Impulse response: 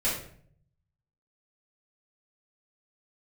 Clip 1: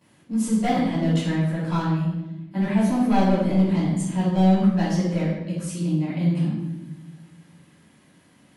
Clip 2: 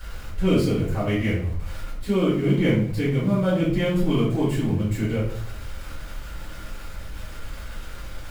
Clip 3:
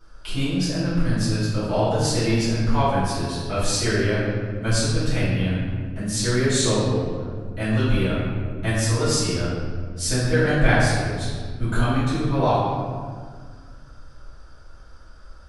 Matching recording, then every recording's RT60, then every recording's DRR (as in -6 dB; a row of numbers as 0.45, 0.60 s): 2; 1.0, 0.60, 1.8 s; -15.5, -10.5, -14.0 dB